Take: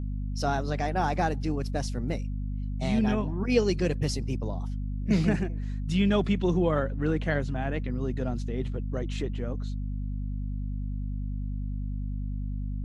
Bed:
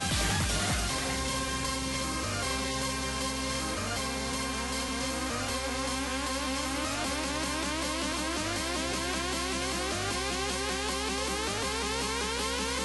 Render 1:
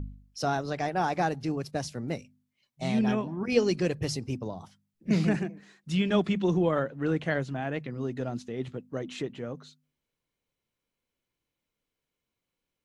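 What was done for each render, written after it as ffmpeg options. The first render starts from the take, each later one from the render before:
-af "bandreject=f=50:t=h:w=4,bandreject=f=100:t=h:w=4,bandreject=f=150:t=h:w=4,bandreject=f=200:t=h:w=4,bandreject=f=250:t=h:w=4"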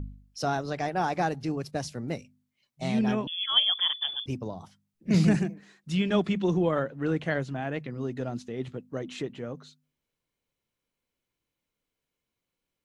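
-filter_complex "[0:a]asettb=1/sr,asplit=3[s0][s1][s2];[s0]atrim=end=3.274[s3];[s1]atrim=start=3.27:end=4.26,asetpts=PTS-STARTPTS,afade=t=in:d=0.004:c=qsin,afade=t=out:st=0.986:d=0.004:c=qsin,lowpass=f=3100:t=q:w=0.5098,lowpass=f=3100:t=q:w=0.6013,lowpass=f=3100:t=q:w=0.9,lowpass=f=3100:t=q:w=2.563,afreqshift=-3600[s4];[s2]atrim=start=4.256[s5];[s3][s4]acrossfade=d=0.004:c1=hsin:c2=qsin[s6];[s6][s5]acrossfade=d=0.004:c1=qsin:c2=hsin,asettb=1/sr,asplit=3[s7][s8][s9];[s7]atrim=end=5.144[s10];[s8]atrim=start=5.14:end=5.54,asetpts=PTS-STARTPTS,afade=t=in:d=0.004:c=qsin,afade=t=out:st=0.396:d=0.004:c=qsin,bass=f=250:g=6,treble=f=4000:g=8[s11];[s9]atrim=start=5.536[s12];[s10][s11]acrossfade=d=0.004:c1=hsin:c2=qsin[s13];[s13][s12]acrossfade=d=0.004:c1=qsin:c2=hsin"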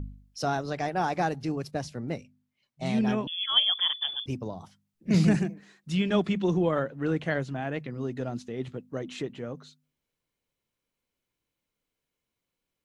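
-filter_complex "[0:a]asettb=1/sr,asplit=3[s0][s1][s2];[s0]atrim=end=1.744[s3];[s1]atrim=start=1.74:end=2.86,asetpts=PTS-STARTPTS,afade=t=in:d=0.004:c=qsin,afade=t=out:st=1.116:d=0.004:c=qsin,highshelf=f=5000:g=-7.5[s4];[s2]atrim=start=2.856[s5];[s3][s4]acrossfade=d=0.004:c1=hsin:c2=qsin[s6];[s6][s5]acrossfade=d=0.004:c1=qsin:c2=hsin"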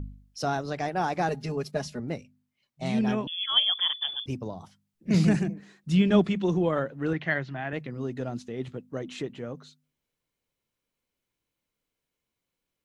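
-filter_complex "[0:a]asettb=1/sr,asplit=3[s0][s1][s2];[s0]atrim=end=1.284[s3];[s1]atrim=start=1.28:end=2,asetpts=PTS-STARTPTS,afade=t=in:d=0.004:c=qsin,afade=t=out:st=0.716:d=0.004:c=qsin,aecho=1:1:4.8:0.88,atrim=end_sample=31752[s4];[s2]atrim=start=1.996[s5];[s3][s4]acrossfade=d=0.004:c1=hsin:c2=qsin[s6];[s6][s5]acrossfade=d=0.004:c1=qsin:c2=hsin,asettb=1/sr,asplit=3[s7][s8][s9];[s7]atrim=end=5.474[s10];[s8]atrim=start=5.47:end=6.27,asetpts=PTS-STARTPTS,afade=t=in:d=0.004:c=qsin,afade=t=out:st=0.796:d=0.004:c=qsin,lowshelf=f=460:g=6.5[s11];[s9]atrim=start=6.266[s12];[s10][s11]acrossfade=d=0.004:c1=hsin:c2=qsin[s13];[s13][s12]acrossfade=d=0.004:c1=qsin:c2=hsin,asettb=1/sr,asplit=3[s14][s15][s16];[s14]atrim=end=7.134[s17];[s15]atrim=start=7.13:end=7.73,asetpts=PTS-STARTPTS,afade=t=in:d=0.004:c=qsin,afade=t=out:st=0.596:d=0.004:c=qsin,highpass=110,equalizer=f=250:t=q:w=4:g=-6,equalizer=f=480:t=q:w=4:g=-9,equalizer=f=1900:t=q:w=4:g=8,lowpass=f=4900:w=0.5412,lowpass=f=4900:w=1.3066[s18];[s16]atrim=start=7.726[s19];[s17][s18]acrossfade=d=0.004:c1=hsin:c2=qsin[s20];[s20][s19]acrossfade=d=0.004:c1=qsin:c2=hsin"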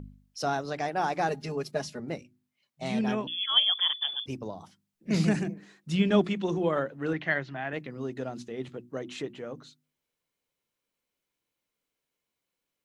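-af "lowshelf=f=130:g=-10,bandreject=f=60:t=h:w=6,bandreject=f=120:t=h:w=6,bandreject=f=180:t=h:w=6,bandreject=f=240:t=h:w=6,bandreject=f=300:t=h:w=6,bandreject=f=360:t=h:w=6"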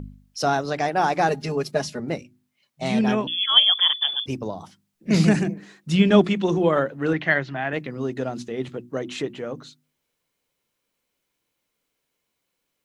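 -af "volume=2.37"

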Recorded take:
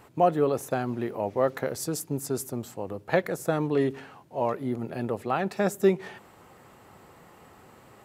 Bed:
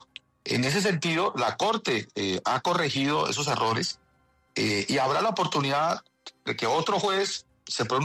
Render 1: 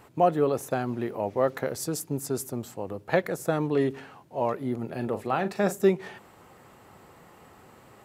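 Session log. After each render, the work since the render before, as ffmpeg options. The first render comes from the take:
-filter_complex "[0:a]asettb=1/sr,asplit=3[s0][s1][s2];[s0]atrim=end=4.974[s3];[s1]atrim=start=4.97:end=5.8,asetpts=PTS-STARTPTS,afade=t=in:d=0.004:c=qsin,afade=t=out:st=0.826:d=0.004:c=qsin,asplit=2[s4][s5];[s5]adelay=39,volume=0.282[s6];[s4][s6]amix=inputs=2:normalize=0,atrim=end_sample=36603[s7];[s2]atrim=start=5.796[s8];[s3][s7]acrossfade=d=0.004:c1=hsin:c2=qsin[s9];[s9][s8]acrossfade=d=0.004:c1=qsin:c2=hsin"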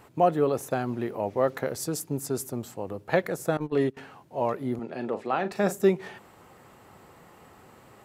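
-filter_complex "[0:a]asettb=1/sr,asplit=3[s0][s1][s2];[s0]atrim=end=3.574[s3];[s1]atrim=start=3.57:end=3.97,asetpts=PTS-STARTPTS,afade=t=in:d=0.004:c=qsin,afade=t=out:st=0.396:d=0.004:c=qsin,agate=range=0.126:threshold=0.0447:ratio=16:release=100:detection=peak[s4];[s2]atrim=start=3.966[s5];[s3][s4]acrossfade=d=0.004:c1=hsin:c2=qsin[s6];[s6][s5]acrossfade=d=0.004:c1=qsin:c2=hsin,asettb=1/sr,asplit=3[s7][s8][s9];[s7]atrim=end=4.794[s10];[s8]atrim=start=4.79:end=5.52,asetpts=PTS-STARTPTS,afade=t=in:d=0.004:c=qsin,afade=t=out:st=0.726:d=0.004:c=qsin,highpass=210,lowpass=5800[s11];[s9]atrim=start=5.516[s12];[s10][s11]acrossfade=d=0.004:c1=hsin:c2=qsin[s13];[s13][s12]acrossfade=d=0.004:c1=qsin:c2=hsin"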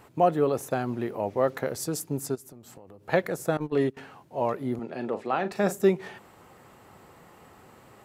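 -filter_complex "[0:a]asplit=3[s0][s1][s2];[s0]afade=t=out:st=2.34:d=0.02[s3];[s1]acompressor=threshold=0.00708:ratio=20:attack=3.2:release=140:knee=1:detection=peak,afade=t=in:st=2.34:d=0.02,afade=t=out:st=3.03:d=0.02[s4];[s2]afade=t=in:st=3.03:d=0.02[s5];[s3][s4][s5]amix=inputs=3:normalize=0"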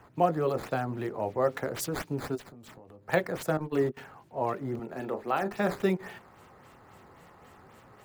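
-filter_complex "[0:a]acrossover=split=160|810|2300[s0][s1][s2][s3];[s1]flanger=delay=16.5:depth=6.8:speed=0.5[s4];[s3]acrusher=samples=9:mix=1:aa=0.000001:lfo=1:lforange=14.4:lforate=3.7[s5];[s0][s4][s2][s5]amix=inputs=4:normalize=0"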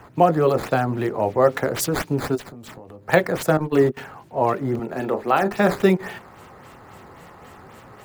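-af "volume=3.16,alimiter=limit=0.708:level=0:latency=1"

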